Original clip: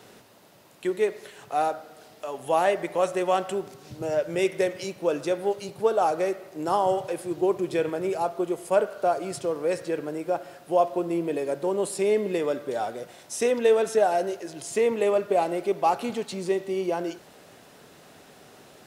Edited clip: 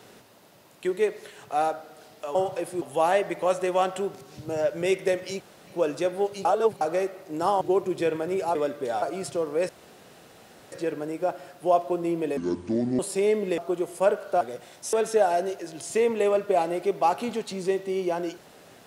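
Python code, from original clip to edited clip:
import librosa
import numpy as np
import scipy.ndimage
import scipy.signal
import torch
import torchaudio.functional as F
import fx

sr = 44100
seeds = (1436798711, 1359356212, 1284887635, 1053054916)

y = fx.edit(x, sr, fx.insert_room_tone(at_s=4.93, length_s=0.27),
    fx.reverse_span(start_s=5.71, length_s=0.36),
    fx.move(start_s=6.87, length_s=0.47, to_s=2.35),
    fx.swap(start_s=8.28, length_s=0.83, other_s=12.41, other_length_s=0.47),
    fx.insert_room_tone(at_s=9.78, length_s=1.03),
    fx.speed_span(start_s=11.43, length_s=0.39, speed=0.63),
    fx.cut(start_s=13.4, length_s=0.34), tone=tone)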